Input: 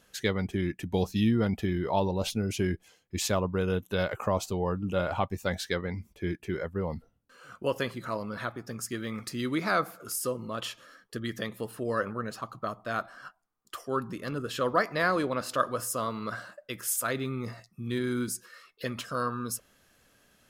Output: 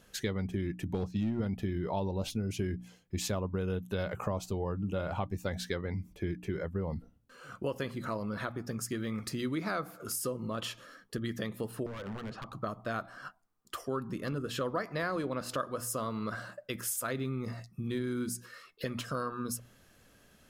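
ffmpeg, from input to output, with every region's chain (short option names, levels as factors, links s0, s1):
-filter_complex "[0:a]asettb=1/sr,asplit=3[s0][s1][s2];[s0]atrim=end=0.934[s3];[s1]atrim=start=0.93:end=1.4,asetpts=PTS-STARTPTS,afade=t=in:d=0.004:c=qsin,afade=t=out:st=0.466:d=0.004:c=qsin,highpass=f=59:w=0.5412,highpass=f=59:w=1.3066,aemphasis=mode=reproduction:type=50fm,asoftclip=type=hard:threshold=0.106[s4];[s2]atrim=start=1.396[s5];[s3][s4]acrossfade=d=0.004:c1=hsin:c2=qsin[s6];[s6][s5]acrossfade=d=0.004:c1=qsin:c2=hsin,asettb=1/sr,asplit=3[s7][s8][s9];[s7]atrim=end=11.864[s10];[s8]atrim=start=11.86:end=12.53,asetpts=PTS-STARTPTS,afade=t=in:d=0.004:c=qsin,afade=t=out:st=0.666:d=0.004:c=qsin,lowpass=3000,acompressor=threshold=0.0178:ratio=8:attack=3.2:release=140:knee=1:detection=peak,aeval=exprs='0.0133*(abs(mod(val(0)/0.0133+3,4)-2)-1)':c=same[s11];[s9]atrim=start=12.526[s12];[s10][s11]acrossfade=d=0.004:c1=hsin:c2=qsin[s13];[s13][s12]acrossfade=d=0.004:c1=qsin:c2=hsin,lowshelf=f=360:g=7,bandreject=f=60:t=h:w=6,bandreject=f=120:t=h:w=6,bandreject=f=180:t=h:w=6,bandreject=f=240:t=h:w=6,bandreject=f=300:t=h:w=6,acompressor=threshold=0.0224:ratio=3"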